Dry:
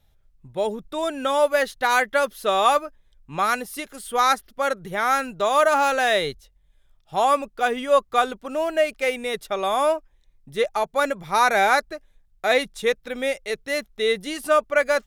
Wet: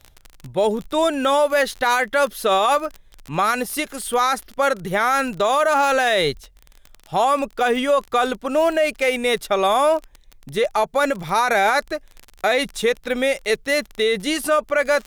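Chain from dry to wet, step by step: crackle 32/s -34 dBFS; limiter -17.5 dBFS, peak gain reduction 11.5 dB; gain +8 dB

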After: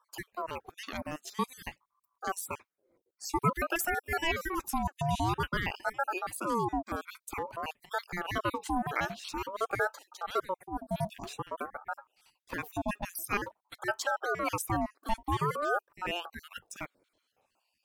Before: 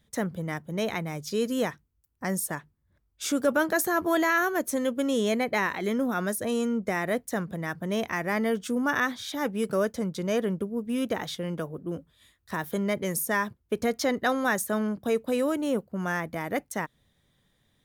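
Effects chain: random spectral dropouts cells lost 53%; ring modulator with a swept carrier 760 Hz, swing 45%, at 0.5 Hz

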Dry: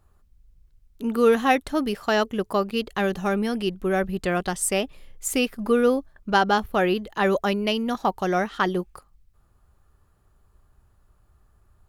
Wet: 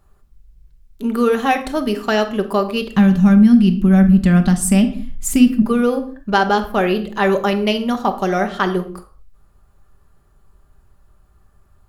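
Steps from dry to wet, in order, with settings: 2.96–5.62 resonant low shelf 310 Hz +9.5 dB, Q 3; compressor 2:1, threshold -19 dBFS, peak gain reduction 6.5 dB; reverb, pre-delay 5 ms, DRR 6 dB; gain +4.5 dB

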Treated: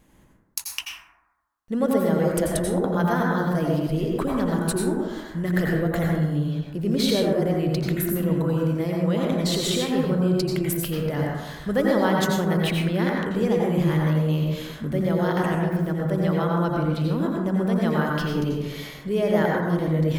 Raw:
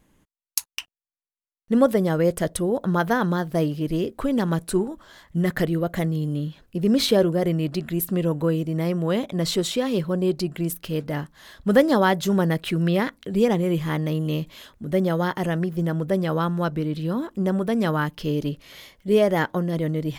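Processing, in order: in parallel at +0.5 dB: negative-ratio compressor -30 dBFS, ratio -1; on the sum: plate-style reverb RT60 1.1 s, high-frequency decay 0.3×, pre-delay 75 ms, DRR -2 dB; gain -7.5 dB

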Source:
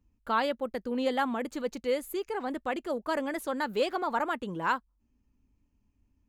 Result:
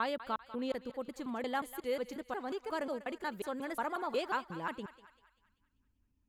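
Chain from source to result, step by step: slices in reverse order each 0.18 s, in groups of 3; thinning echo 0.195 s, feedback 50%, high-pass 780 Hz, level -13 dB; gain -6.5 dB

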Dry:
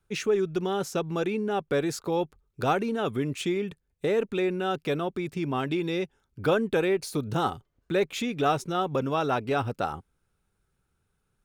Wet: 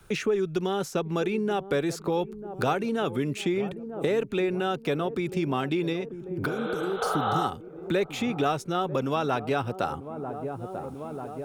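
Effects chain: 6.51–7.41 spectral repair 410–4100 Hz both; 5.92–7.02 compressor, threshold -32 dBFS, peak gain reduction 11.5 dB; dark delay 0.942 s, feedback 48%, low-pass 780 Hz, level -14.5 dB; three-band squash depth 70%

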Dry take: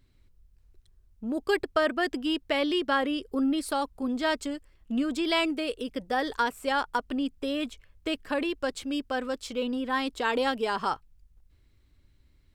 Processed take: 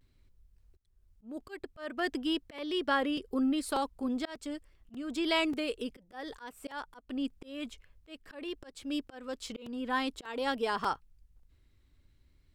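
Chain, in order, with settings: vibrato 0.49 Hz 41 cents; auto swell 0.324 s; crackling interface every 0.59 s, samples 128, repeat, from 0.81; gain -3 dB

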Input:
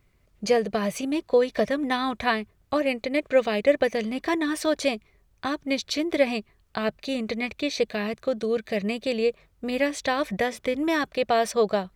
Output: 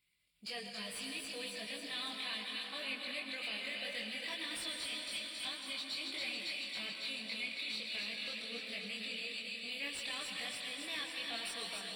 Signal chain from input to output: bin magnitudes rounded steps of 15 dB; band shelf 770 Hz -13 dB 2.9 oct; thin delay 0.275 s, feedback 69%, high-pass 2000 Hz, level -5 dB; limiter -25.5 dBFS, peak gain reduction 10 dB; 2.17–2.85 HPF 180 Hz 24 dB/oct; reverb RT60 5.5 s, pre-delay 98 ms, DRR 2.5 dB; chorus voices 6, 0.67 Hz, delay 22 ms, depth 3.9 ms; differentiator; soft clip -39 dBFS, distortion -16 dB; running mean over 7 samples; gain +13.5 dB

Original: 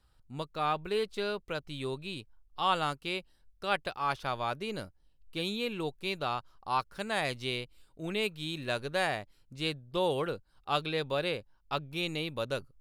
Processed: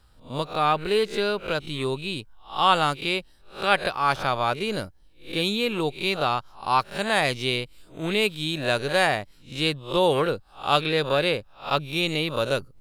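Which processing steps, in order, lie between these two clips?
spectral swells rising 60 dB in 0.32 s; gain +8.5 dB

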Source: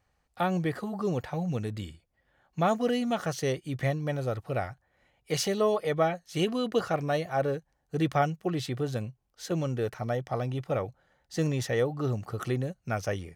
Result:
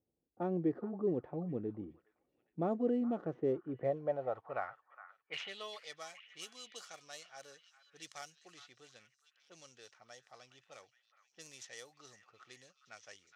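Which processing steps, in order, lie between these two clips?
median filter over 9 samples; low-pass opened by the level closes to 530 Hz, open at -23 dBFS; high shelf 7000 Hz +8 dB; band-pass sweep 330 Hz -> 5900 Hz, 3.55–6.07; delay with a stepping band-pass 0.414 s, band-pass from 1400 Hz, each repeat 0.7 oct, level -11 dB; gain +1 dB

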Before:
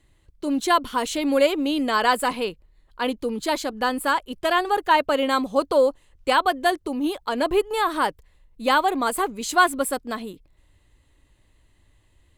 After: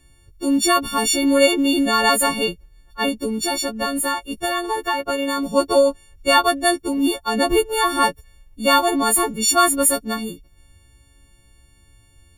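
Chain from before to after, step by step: frequency quantiser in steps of 4 st; low shelf 270 Hz +11.5 dB; 3.08–5.46 compressor, threshold -19 dBFS, peak gain reduction 9 dB

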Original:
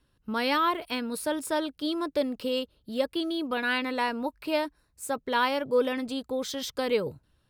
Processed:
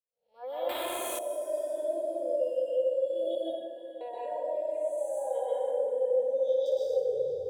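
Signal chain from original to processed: time blur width 0.43 s; 5.48–6.66 LPF 4200 Hz 24 dB/oct; spectral noise reduction 28 dB; expander -57 dBFS; EQ curve 100 Hz 0 dB, 290 Hz -23 dB, 480 Hz +11 dB, 750 Hz +6 dB, 1200 Hz -23 dB, 2800 Hz -5 dB; compressor, threshold -36 dBFS, peak gain reduction 14.5 dB; limiter -35.5 dBFS, peak gain reduction 5.5 dB; 3.35–4.01 octave resonator G#, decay 0.35 s; diffused feedback echo 0.492 s, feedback 41%, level -13.5 dB; plate-style reverb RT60 1.5 s, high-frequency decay 0.5×, pre-delay 0.115 s, DRR -6.5 dB; 0.69–1.19 spectral compressor 2:1; gain +3 dB

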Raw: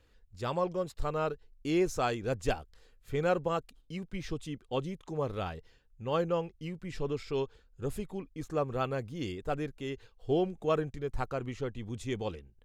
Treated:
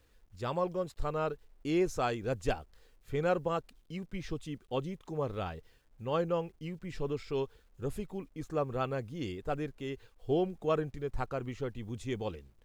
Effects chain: high shelf 3300 Hz -3 dB; requantised 12-bit, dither none; gain -1 dB

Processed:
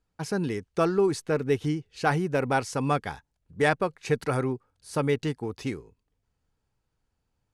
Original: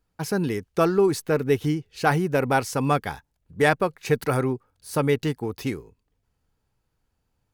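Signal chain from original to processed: LPF 10000 Hz 24 dB/oct; gain -3.5 dB

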